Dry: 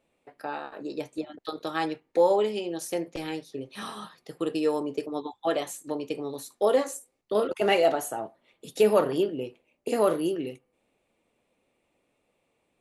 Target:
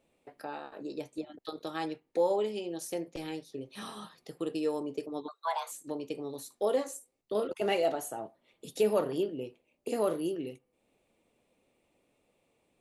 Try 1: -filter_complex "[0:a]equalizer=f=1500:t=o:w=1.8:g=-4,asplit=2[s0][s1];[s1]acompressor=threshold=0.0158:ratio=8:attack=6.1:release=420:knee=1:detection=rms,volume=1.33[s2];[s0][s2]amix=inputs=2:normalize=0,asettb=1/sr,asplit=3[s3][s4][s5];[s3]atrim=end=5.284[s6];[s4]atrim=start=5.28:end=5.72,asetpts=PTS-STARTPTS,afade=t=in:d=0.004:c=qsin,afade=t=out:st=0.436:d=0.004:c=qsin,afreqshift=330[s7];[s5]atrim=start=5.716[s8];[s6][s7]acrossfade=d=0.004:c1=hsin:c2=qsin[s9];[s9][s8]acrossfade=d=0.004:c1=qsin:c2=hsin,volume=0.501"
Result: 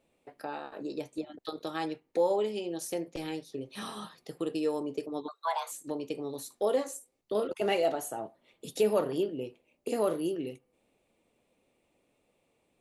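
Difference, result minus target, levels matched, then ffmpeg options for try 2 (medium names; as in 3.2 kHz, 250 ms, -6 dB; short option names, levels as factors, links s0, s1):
compression: peak gain reduction -7.5 dB
-filter_complex "[0:a]equalizer=f=1500:t=o:w=1.8:g=-4,asplit=2[s0][s1];[s1]acompressor=threshold=0.00596:ratio=8:attack=6.1:release=420:knee=1:detection=rms,volume=1.33[s2];[s0][s2]amix=inputs=2:normalize=0,asettb=1/sr,asplit=3[s3][s4][s5];[s3]atrim=end=5.284[s6];[s4]atrim=start=5.28:end=5.72,asetpts=PTS-STARTPTS,afade=t=in:d=0.004:c=qsin,afade=t=out:st=0.436:d=0.004:c=qsin,afreqshift=330[s7];[s5]atrim=start=5.716[s8];[s6][s7]acrossfade=d=0.004:c1=hsin:c2=qsin[s9];[s9][s8]acrossfade=d=0.004:c1=qsin:c2=hsin,volume=0.501"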